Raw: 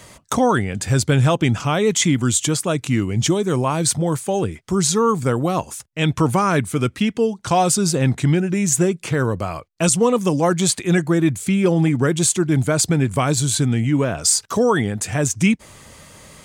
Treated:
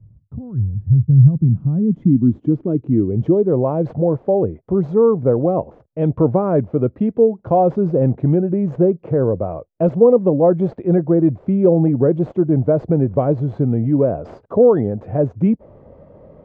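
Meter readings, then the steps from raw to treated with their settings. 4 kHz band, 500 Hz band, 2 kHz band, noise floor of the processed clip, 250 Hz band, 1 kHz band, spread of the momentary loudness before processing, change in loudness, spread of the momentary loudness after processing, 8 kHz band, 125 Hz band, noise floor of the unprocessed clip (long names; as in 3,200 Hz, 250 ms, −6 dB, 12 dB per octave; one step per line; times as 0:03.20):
below −35 dB, +5.5 dB, below −20 dB, −55 dBFS, +2.5 dB, −3.5 dB, 5 LU, +2.0 dB, 8 LU, below −40 dB, +2.5 dB, −50 dBFS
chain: running median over 5 samples
low-pass filter sweep 110 Hz → 560 Hz, 0:00.79–0:03.57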